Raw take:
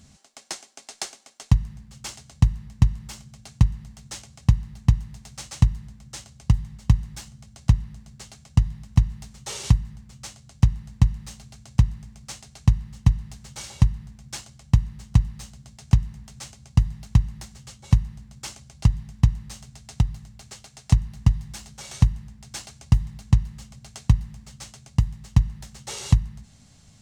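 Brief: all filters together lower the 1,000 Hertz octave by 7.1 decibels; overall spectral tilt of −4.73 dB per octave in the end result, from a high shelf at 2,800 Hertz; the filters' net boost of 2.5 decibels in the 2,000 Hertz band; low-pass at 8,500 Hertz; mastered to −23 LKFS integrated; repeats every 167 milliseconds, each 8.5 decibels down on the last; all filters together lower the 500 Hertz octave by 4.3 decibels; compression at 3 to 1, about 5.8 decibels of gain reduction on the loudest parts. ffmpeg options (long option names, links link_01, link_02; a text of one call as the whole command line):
ffmpeg -i in.wav -af "lowpass=8500,equalizer=frequency=500:width_type=o:gain=-3.5,equalizer=frequency=1000:width_type=o:gain=-9,equalizer=frequency=2000:width_type=o:gain=3,highshelf=frequency=2800:gain=5,acompressor=threshold=-18dB:ratio=3,aecho=1:1:167|334|501|668:0.376|0.143|0.0543|0.0206,volume=6.5dB" out.wav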